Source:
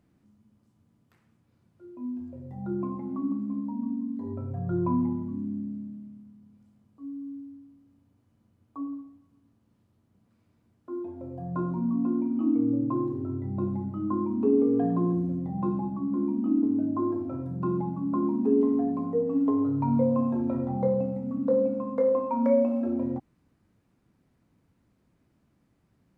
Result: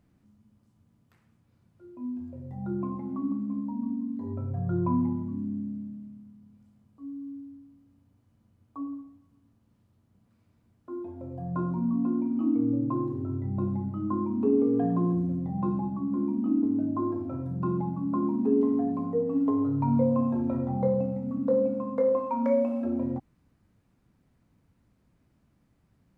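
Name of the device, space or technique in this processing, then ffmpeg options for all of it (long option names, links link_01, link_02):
low shelf boost with a cut just above: -filter_complex "[0:a]asettb=1/sr,asplit=3[link_01][link_02][link_03];[link_01]atrim=end=22.174[link_04];[link_02]atrim=start=22.17:end=22.85,asetpts=PTS-STARTPTS,afade=type=in:duration=0.004:curve=qsin,afade=type=out:start_time=0.676:duration=0.004:curve=qsin,tiltshelf=frequency=970:gain=-3[link_05];[link_03]atrim=start=22.846[link_06];[link_04][link_05]acrossfade=duration=0.004:curve1=hsin:curve2=qsin[link_07];[link_07][link_06]acrossfade=duration=0.004:curve1=qsin:curve2=hsin,lowshelf=frequency=76:gain=7,equalizer=frequency=350:width_type=o:width=0.77:gain=-2.5"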